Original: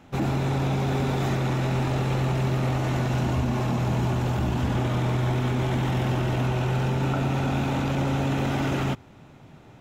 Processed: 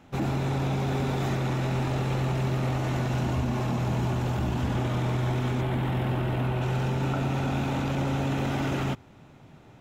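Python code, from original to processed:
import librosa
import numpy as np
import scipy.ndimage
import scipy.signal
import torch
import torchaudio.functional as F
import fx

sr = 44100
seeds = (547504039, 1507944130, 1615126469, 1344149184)

y = fx.peak_eq(x, sr, hz=6100.0, db=-11.5, octaves=0.87, at=(5.61, 6.62))
y = y * 10.0 ** (-2.5 / 20.0)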